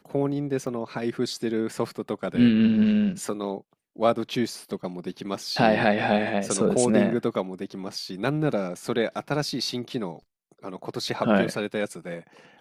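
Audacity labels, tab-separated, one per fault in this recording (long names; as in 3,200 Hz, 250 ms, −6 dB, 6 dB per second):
0.670000	0.670000	drop-out 2.2 ms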